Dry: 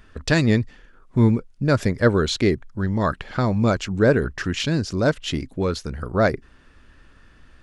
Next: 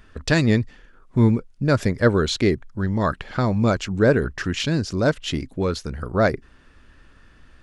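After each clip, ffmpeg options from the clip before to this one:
ffmpeg -i in.wav -af anull out.wav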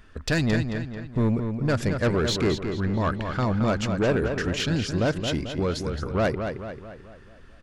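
ffmpeg -i in.wav -filter_complex "[0:a]asoftclip=type=tanh:threshold=-16dB,asplit=2[link_01][link_02];[link_02]adelay=220,lowpass=frequency=4600:poles=1,volume=-6.5dB,asplit=2[link_03][link_04];[link_04]adelay=220,lowpass=frequency=4600:poles=1,volume=0.5,asplit=2[link_05][link_06];[link_06]adelay=220,lowpass=frequency=4600:poles=1,volume=0.5,asplit=2[link_07][link_08];[link_08]adelay=220,lowpass=frequency=4600:poles=1,volume=0.5,asplit=2[link_09][link_10];[link_10]adelay=220,lowpass=frequency=4600:poles=1,volume=0.5,asplit=2[link_11][link_12];[link_12]adelay=220,lowpass=frequency=4600:poles=1,volume=0.5[link_13];[link_03][link_05][link_07][link_09][link_11][link_13]amix=inputs=6:normalize=0[link_14];[link_01][link_14]amix=inputs=2:normalize=0,volume=-1.5dB" out.wav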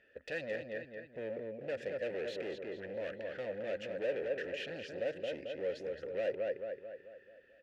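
ffmpeg -i in.wav -filter_complex "[0:a]asoftclip=type=hard:threshold=-26.5dB,asplit=3[link_01][link_02][link_03];[link_01]bandpass=frequency=530:width_type=q:width=8,volume=0dB[link_04];[link_02]bandpass=frequency=1840:width_type=q:width=8,volume=-6dB[link_05];[link_03]bandpass=frequency=2480:width_type=q:width=8,volume=-9dB[link_06];[link_04][link_05][link_06]amix=inputs=3:normalize=0,volume=2dB" out.wav

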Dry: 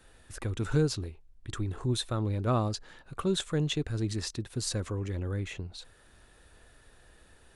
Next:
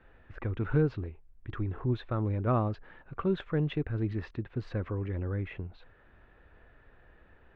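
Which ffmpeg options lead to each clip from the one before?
ffmpeg -i in.wav -af "lowpass=frequency=2400:width=0.5412,lowpass=frequency=2400:width=1.3066" out.wav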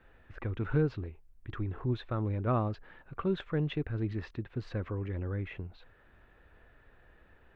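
ffmpeg -i in.wav -af "highshelf=frequency=3600:gain=6,volume=-2dB" out.wav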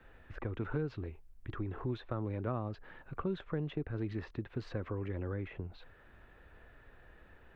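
ffmpeg -i in.wav -filter_complex "[0:a]acrossover=split=250|1300[link_01][link_02][link_03];[link_01]acompressor=threshold=-41dB:ratio=4[link_04];[link_02]acompressor=threshold=-39dB:ratio=4[link_05];[link_03]acompressor=threshold=-56dB:ratio=4[link_06];[link_04][link_05][link_06]amix=inputs=3:normalize=0,volume=2dB" out.wav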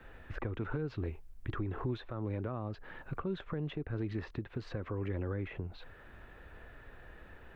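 ffmpeg -i in.wav -af "alimiter=level_in=8dB:limit=-24dB:level=0:latency=1:release=324,volume=-8dB,volume=5.5dB" out.wav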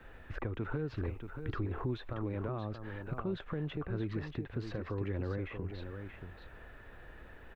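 ffmpeg -i in.wav -af "aecho=1:1:631:0.398" out.wav

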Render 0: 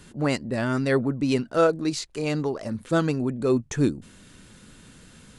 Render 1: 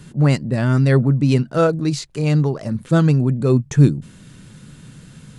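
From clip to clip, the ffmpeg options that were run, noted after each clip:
ffmpeg -i in.wav -af "equalizer=frequency=140:width=1.7:gain=13.5,volume=2.5dB" out.wav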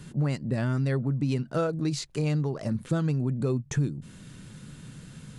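ffmpeg -i in.wav -af "acompressor=threshold=-20dB:ratio=6,volume=-3.5dB" out.wav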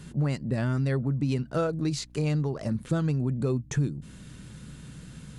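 ffmpeg -i in.wav -af "aeval=exprs='val(0)+0.00282*(sin(2*PI*60*n/s)+sin(2*PI*2*60*n/s)/2+sin(2*PI*3*60*n/s)/3+sin(2*PI*4*60*n/s)/4+sin(2*PI*5*60*n/s)/5)':channel_layout=same" out.wav

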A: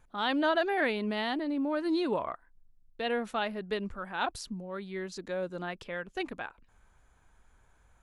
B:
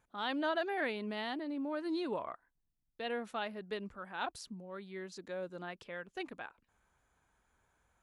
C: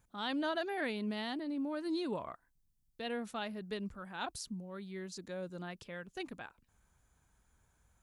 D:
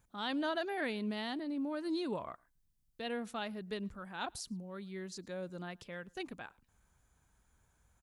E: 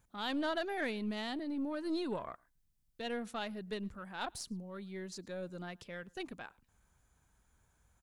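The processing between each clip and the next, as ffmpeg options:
ffmpeg -i in.wav -af "highpass=frequency=120:poles=1,volume=-6.5dB" out.wav
ffmpeg -i in.wav -af "bass=frequency=250:gain=10,treble=frequency=4000:gain=9,volume=-2.5dB" out.wav
ffmpeg -i in.wav -filter_complex "[0:a]asplit=2[link_01][link_02];[link_02]adelay=110.8,volume=-28dB,highshelf=frequency=4000:gain=-2.49[link_03];[link_01][link_03]amix=inputs=2:normalize=0" out.wav
ffmpeg -i in.wav -af "aeval=exprs='0.0631*(cos(1*acos(clip(val(0)/0.0631,-1,1)))-cos(1*PI/2))+0.00282*(cos(6*acos(clip(val(0)/0.0631,-1,1)))-cos(6*PI/2))':channel_layout=same" out.wav

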